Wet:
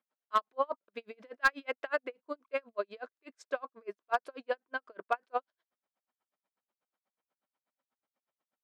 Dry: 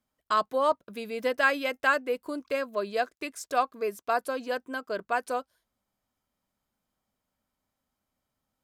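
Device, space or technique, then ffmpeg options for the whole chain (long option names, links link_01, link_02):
helicopter radio: -af "highpass=390,lowpass=2800,aeval=exprs='val(0)*pow(10,-40*(0.5-0.5*cos(2*PI*8.2*n/s))/20)':channel_layout=same,asoftclip=type=hard:threshold=-19dB,volume=2dB"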